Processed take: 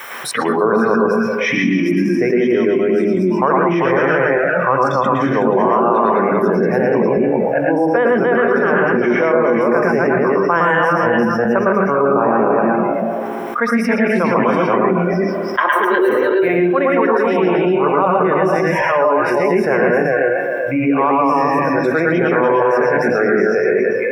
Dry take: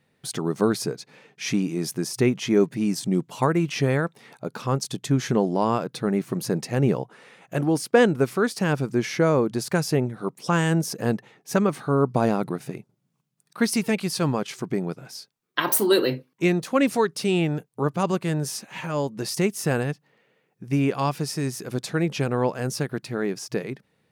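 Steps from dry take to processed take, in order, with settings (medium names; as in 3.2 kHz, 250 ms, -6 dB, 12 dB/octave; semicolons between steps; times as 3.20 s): backward echo that repeats 194 ms, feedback 49%, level -1.5 dB; hum notches 50/100/150/200/250/300/350/400 Hz; spectral noise reduction 20 dB; gain riding within 4 dB 0.5 s; added noise blue -56 dBFS; three-band isolator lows -16 dB, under 440 Hz, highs -16 dB, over 2.8 kHz; bucket-brigade echo 67 ms, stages 2048, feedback 79%, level -21 dB; reverberation RT60 0.15 s, pre-delay 108 ms, DRR -1.5 dB; level flattener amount 70%; trim -7.5 dB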